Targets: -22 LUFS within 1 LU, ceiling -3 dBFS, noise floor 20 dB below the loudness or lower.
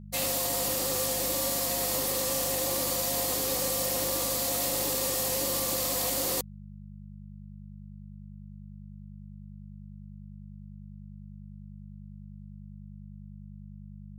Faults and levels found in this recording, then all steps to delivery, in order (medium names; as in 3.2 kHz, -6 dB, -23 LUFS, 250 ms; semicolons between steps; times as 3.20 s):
hum 50 Hz; highest harmonic 200 Hz; hum level -42 dBFS; loudness -27.0 LUFS; peak level -16.5 dBFS; loudness target -22.0 LUFS
-> de-hum 50 Hz, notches 4; trim +5 dB